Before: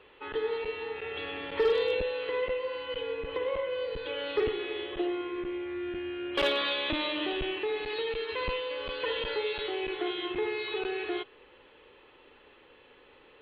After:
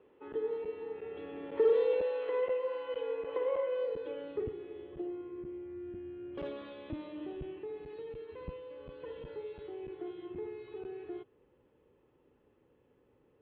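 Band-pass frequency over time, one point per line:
band-pass, Q 0.97
1.32 s 260 Hz
2.05 s 620 Hz
3.78 s 620 Hz
4.48 s 130 Hz

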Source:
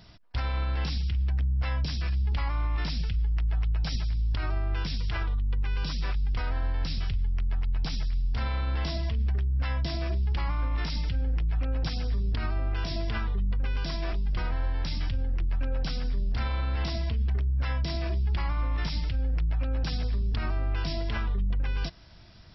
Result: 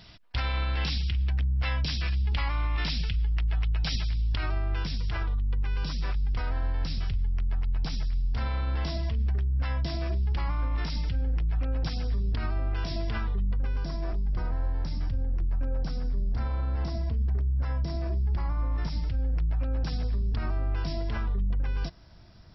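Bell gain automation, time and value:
bell 3000 Hz 1.7 oct
4.22 s +6.5 dB
4.98 s -3 dB
13.39 s -3 dB
13.9 s -14.5 dB
18.54 s -14.5 dB
19.33 s -7 dB

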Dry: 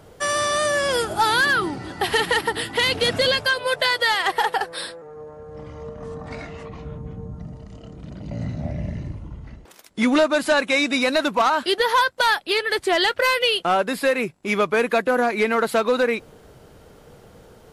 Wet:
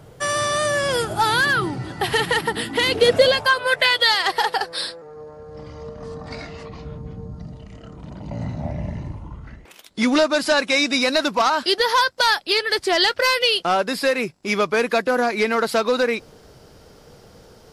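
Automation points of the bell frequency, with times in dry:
bell +10.5 dB 0.55 oct
2.28 s 130 Hz
3.3 s 660 Hz
4.13 s 4700 Hz
7.47 s 4700 Hz
8.02 s 910 Hz
9.27 s 910 Hz
10.03 s 5100 Hz

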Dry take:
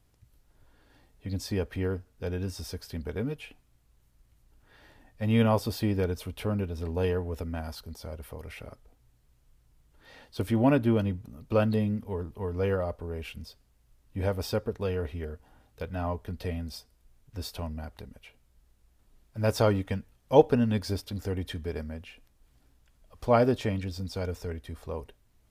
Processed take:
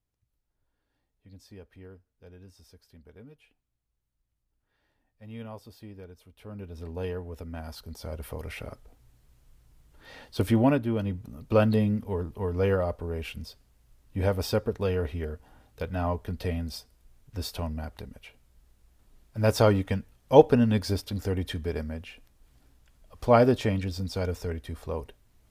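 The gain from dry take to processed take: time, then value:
6.34 s -17.5 dB
6.76 s -5.5 dB
7.39 s -5.5 dB
8.26 s +4.5 dB
10.51 s +4.5 dB
10.88 s -4.5 dB
11.3 s +3 dB

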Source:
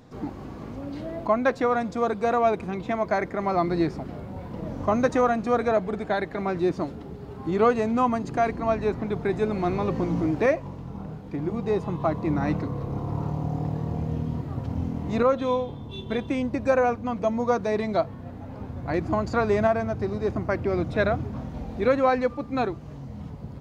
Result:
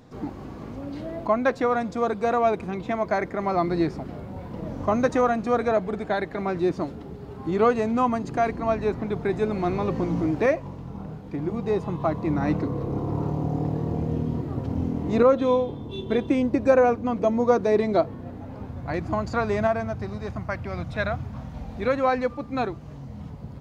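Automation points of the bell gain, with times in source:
bell 360 Hz 1.1 oct
12.33 s +0.5 dB
12.75 s +7.5 dB
18.11 s +7.5 dB
18.91 s -4 dB
19.79 s -4 dB
20.39 s -13.5 dB
21.15 s -13.5 dB
22.16 s -2 dB

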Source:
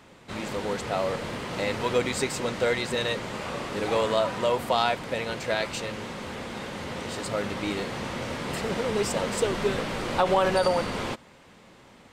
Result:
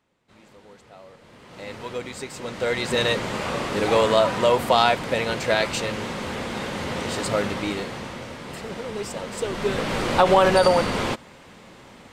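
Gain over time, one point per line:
1.17 s -19 dB
1.73 s -7 dB
2.28 s -7 dB
2.99 s +6 dB
7.35 s +6 dB
8.35 s -4.5 dB
9.3 s -4.5 dB
9.95 s +6 dB

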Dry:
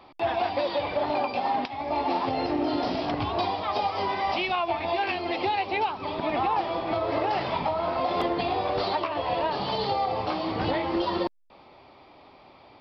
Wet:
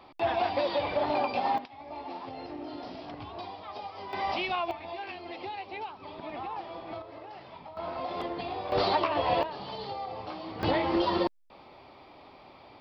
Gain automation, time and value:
-1.5 dB
from 1.58 s -13.5 dB
from 4.13 s -4 dB
from 4.71 s -12 dB
from 7.02 s -19 dB
from 7.77 s -8.5 dB
from 8.72 s +1 dB
from 9.43 s -10.5 dB
from 10.63 s 0 dB

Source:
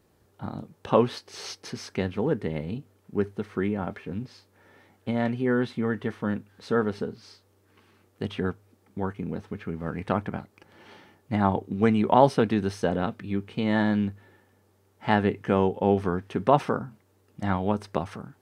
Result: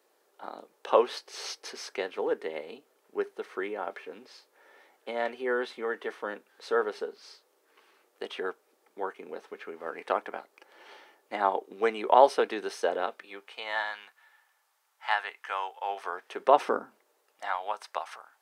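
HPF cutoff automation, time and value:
HPF 24 dB/oct
12.99 s 410 Hz
13.95 s 870 Hz
15.8 s 870 Hz
16.76 s 300 Hz
17.51 s 710 Hz

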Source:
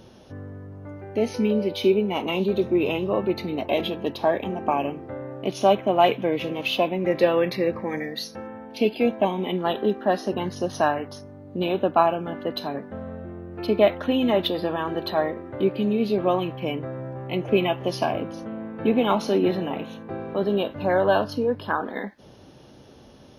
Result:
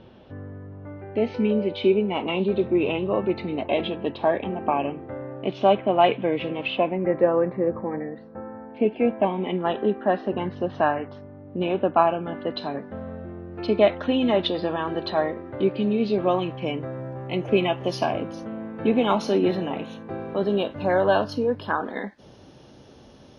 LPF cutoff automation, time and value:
LPF 24 dB/oct
6.55 s 3500 Hz
7.34 s 1400 Hz
8.28 s 1400 Hz
9.35 s 2900 Hz
11.89 s 2900 Hz
12.92 s 5600 Hz
16.2 s 5600 Hz
16.94 s 9700 Hz

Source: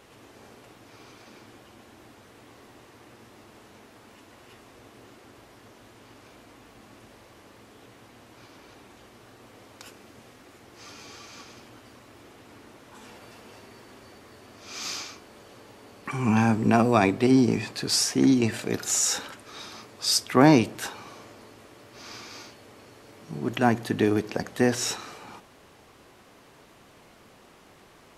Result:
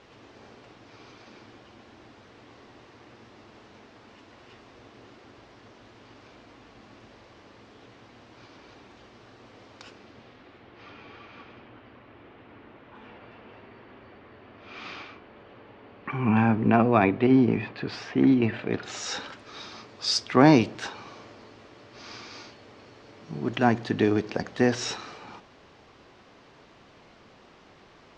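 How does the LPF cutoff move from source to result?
LPF 24 dB/oct
9.84 s 5600 Hz
11.01 s 3000 Hz
18.62 s 3000 Hz
19.27 s 5600 Hz

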